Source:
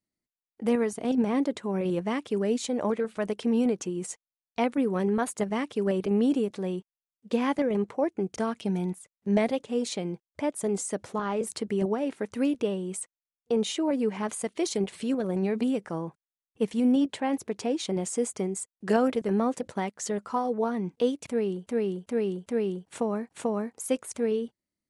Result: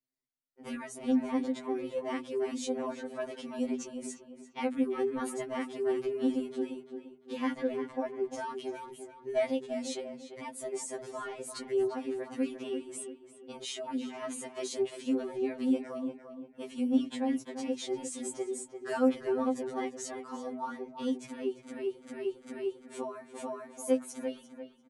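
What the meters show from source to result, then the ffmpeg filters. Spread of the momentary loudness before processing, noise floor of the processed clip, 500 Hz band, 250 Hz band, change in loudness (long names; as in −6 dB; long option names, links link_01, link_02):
7 LU, −57 dBFS, −5.5 dB, −6.0 dB, −6.0 dB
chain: -filter_complex "[0:a]bandreject=frequency=50:width_type=h:width=6,bandreject=frequency=100:width_type=h:width=6,bandreject=frequency=150:width_type=h:width=6,bandreject=frequency=200:width_type=h:width=6,bandreject=frequency=250:width_type=h:width=6,asplit=2[link_01][link_02];[link_02]adelay=345,lowpass=frequency=2700:poles=1,volume=-8.5dB,asplit=2[link_03][link_04];[link_04]adelay=345,lowpass=frequency=2700:poles=1,volume=0.35,asplit=2[link_05][link_06];[link_06]adelay=345,lowpass=frequency=2700:poles=1,volume=0.35,asplit=2[link_07][link_08];[link_08]adelay=345,lowpass=frequency=2700:poles=1,volume=0.35[link_09];[link_01][link_03][link_05][link_07][link_09]amix=inputs=5:normalize=0,afftfilt=real='re*2.45*eq(mod(b,6),0)':imag='im*2.45*eq(mod(b,6),0)':win_size=2048:overlap=0.75,volume=-3.5dB"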